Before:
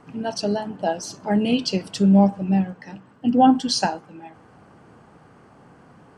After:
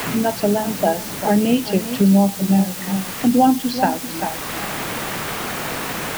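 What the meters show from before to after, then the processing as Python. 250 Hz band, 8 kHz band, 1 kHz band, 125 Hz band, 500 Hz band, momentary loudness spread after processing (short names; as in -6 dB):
+3.0 dB, +7.5 dB, +3.0 dB, +3.0 dB, +4.5 dB, 9 LU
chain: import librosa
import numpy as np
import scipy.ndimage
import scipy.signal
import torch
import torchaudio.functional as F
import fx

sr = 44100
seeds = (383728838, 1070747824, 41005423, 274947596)

p1 = scipy.signal.sosfilt(scipy.signal.butter(2, 2600.0, 'lowpass', fs=sr, output='sos'), x)
p2 = fx.quant_dither(p1, sr, seeds[0], bits=6, dither='triangular')
p3 = p2 + fx.echo_single(p2, sr, ms=391, db=-14.0, dry=0)
p4 = fx.band_squash(p3, sr, depth_pct=70)
y = F.gain(torch.from_numpy(p4), 4.0).numpy()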